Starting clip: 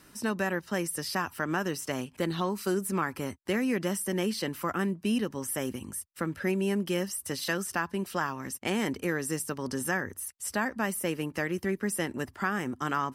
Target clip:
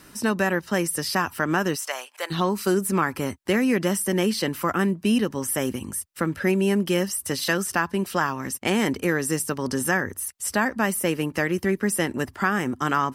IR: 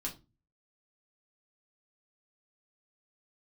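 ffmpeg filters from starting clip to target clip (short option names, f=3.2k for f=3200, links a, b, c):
-filter_complex "[0:a]asplit=3[a][b][c];[a]afade=t=out:st=1.75:d=0.02[d];[b]highpass=f=630:w=0.5412,highpass=f=630:w=1.3066,afade=t=in:st=1.75:d=0.02,afade=t=out:st=2.3:d=0.02[e];[c]afade=t=in:st=2.3:d=0.02[f];[d][e][f]amix=inputs=3:normalize=0,volume=7dB"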